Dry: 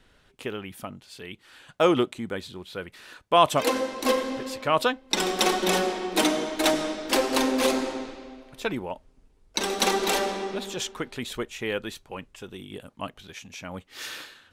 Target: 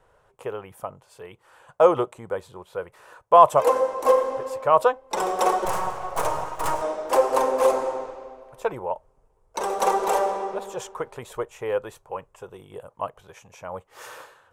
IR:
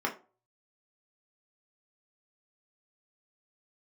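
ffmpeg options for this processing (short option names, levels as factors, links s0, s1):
-filter_complex "[0:a]acontrast=22,asettb=1/sr,asplit=3[s0][s1][s2];[s0]atrim=end=5.654[s3];[s1]atrim=start=5.65:end=6.82,asetpts=PTS-STARTPTS,afade=t=in:d=0.004:c=qsin,afade=t=out:st=1.166:d=0.004:c=qsin,aeval=exprs='abs(val(0))':c=same[s4];[s2]atrim=start=6.816[s5];[s3][s4]acrossfade=d=0.004:c1=hsin:c2=qsin[s6];[s6][s5]acrossfade=d=0.004:c1=qsin:c2=hsin,equalizer=f=125:t=o:w=1:g=6,equalizer=f=250:t=o:w=1:g=-12,equalizer=f=500:t=o:w=1:g=12,equalizer=f=1000:t=o:w=1:g=12,equalizer=f=2000:t=o:w=1:g=-3,equalizer=f=4000:t=o:w=1:g=-10,equalizer=f=8000:t=o:w=1:g=3,volume=0.316"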